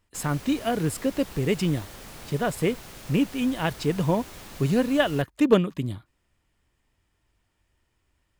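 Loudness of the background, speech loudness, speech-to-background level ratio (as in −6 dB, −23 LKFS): −42.5 LKFS, −25.5 LKFS, 17.0 dB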